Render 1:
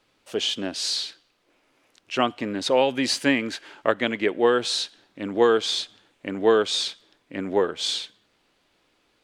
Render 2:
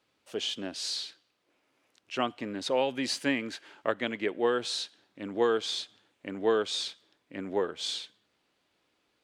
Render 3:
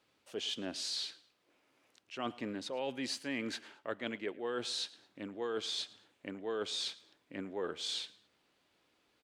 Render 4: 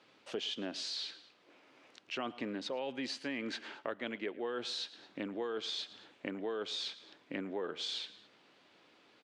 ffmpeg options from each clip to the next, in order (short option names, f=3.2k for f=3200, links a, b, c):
-af "highpass=60,volume=-7.5dB"
-af "areverse,acompressor=threshold=-35dB:ratio=6,areverse,aecho=1:1:110|220:0.0794|0.027"
-af "acompressor=threshold=-46dB:ratio=5,highpass=150,lowpass=5k,volume=10dB"